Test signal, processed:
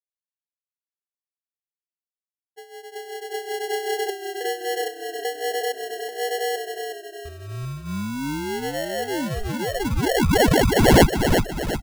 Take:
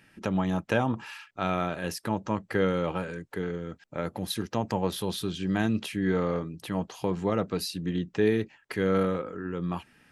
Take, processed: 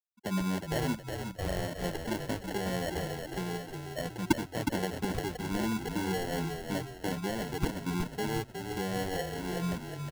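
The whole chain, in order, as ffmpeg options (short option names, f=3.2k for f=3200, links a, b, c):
-filter_complex "[0:a]afftfilt=real='re*gte(hypot(re,im),0.0708)':imag='im*gte(hypot(re,im),0.0708)':win_size=1024:overlap=0.75,equalizer=f=6.6k:w=3:g=-7.5,acrossover=split=230|1400|2000[a][b][c][d];[c]acompressor=threshold=-52dB:ratio=20[e];[a][b][e][d]amix=inputs=4:normalize=0,alimiter=limit=-22dB:level=0:latency=1:release=80,crystalizer=i=7.5:c=0,flanger=delay=2:depth=3.6:regen=-12:speed=1.3:shape=sinusoidal,acrusher=samples=36:mix=1:aa=0.000001,asplit=7[f][g][h][i][j][k][l];[g]adelay=364,afreqshift=-31,volume=-6dB[m];[h]adelay=728,afreqshift=-62,volume=-12.7dB[n];[i]adelay=1092,afreqshift=-93,volume=-19.5dB[o];[j]adelay=1456,afreqshift=-124,volume=-26.2dB[p];[k]adelay=1820,afreqshift=-155,volume=-33dB[q];[l]adelay=2184,afreqshift=-186,volume=-39.7dB[r];[f][m][n][o][p][q][r]amix=inputs=7:normalize=0"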